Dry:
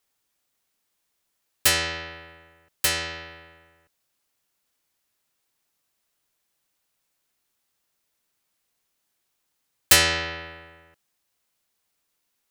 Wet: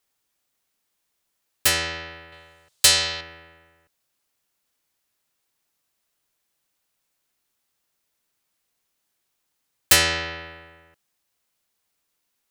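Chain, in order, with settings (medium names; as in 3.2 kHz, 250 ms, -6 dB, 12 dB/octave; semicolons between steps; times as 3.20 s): 2.32–3.21 s: graphic EQ 125/250/500/1000/4000/8000 Hz +6/-7/+4/+3/+10/+9 dB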